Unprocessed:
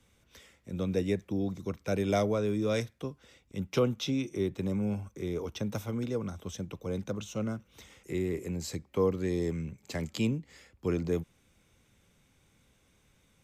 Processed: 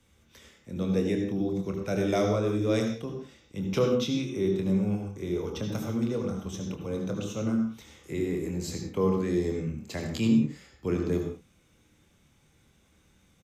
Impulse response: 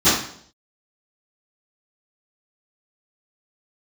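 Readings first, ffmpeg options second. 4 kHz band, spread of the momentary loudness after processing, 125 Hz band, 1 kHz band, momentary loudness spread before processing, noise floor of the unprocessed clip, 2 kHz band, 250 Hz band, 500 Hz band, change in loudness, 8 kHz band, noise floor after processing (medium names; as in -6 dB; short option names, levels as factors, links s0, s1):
+2.5 dB, 10 LU, +3.0 dB, +2.5 dB, 11 LU, -68 dBFS, +2.0 dB, +5.0 dB, +3.0 dB, +4.0 dB, +2.0 dB, -64 dBFS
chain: -filter_complex "[0:a]asplit=2[s0][s1];[s1]adelay=26,volume=0.398[s2];[s0][s2]amix=inputs=2:normalize=0,asplit=2[s3][s4];[1:a]atrim=start_sample=2205,atrim=end_sample=6615,adelay=56[s5];[s4][s5]afir=irnorm=-1:irlink=0,volume=0.0531[s6];[s3][s6]amix=inputs=2:normalize=0"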